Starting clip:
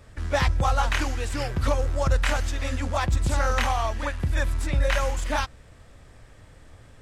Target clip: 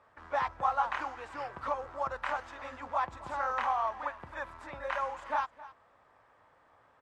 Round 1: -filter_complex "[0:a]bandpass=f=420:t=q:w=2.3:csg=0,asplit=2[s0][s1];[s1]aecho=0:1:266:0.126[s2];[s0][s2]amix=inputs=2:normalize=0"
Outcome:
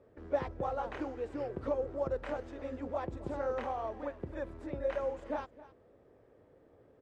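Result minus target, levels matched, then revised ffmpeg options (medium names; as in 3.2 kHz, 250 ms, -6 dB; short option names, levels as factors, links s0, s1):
500 Hz band +8.0 dB
-filter_complex "[0:a]bandpass=f=1000:t=q:w=2.3:csg=0,asplit=2[s0][s1];[s1]aecho=0:1:266:0.126[s2];[s0][s2]amix=inputs=2:normalize=0"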